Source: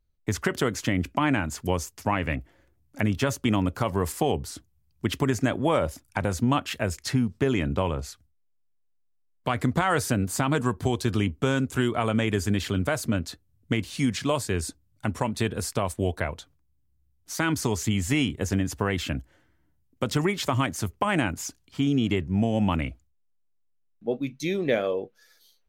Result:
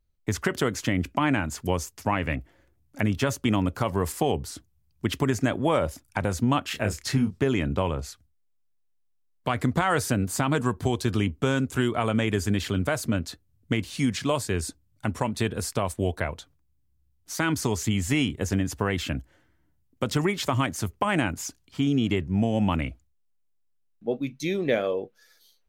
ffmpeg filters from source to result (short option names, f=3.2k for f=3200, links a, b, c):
-filter_complex "[0:a]asettb=1/sr,asplit=3[a][b][c];[a]atrim=end=6.694[d];[b]atrim=start=6.69:end=7.42,asetpts=PTS-STARTPTS,afade=t=in:d=0.004:c=qsin,afade=t=out:st=0.726:d=0.004:c=qsin,asplit=2[e][f];[f]adelay=29,volume=-6dB[g];[e][g]amix=inputs=2:normalize=0,atrim=end_sample=32193[h];[c]atrim=start=7.416[i];[d][h]acrossfade=d=0.004:c1=hsin:c2=qsin[j];[j][i]acrossfade=d=0.004:c1=qsin:c2=hsin"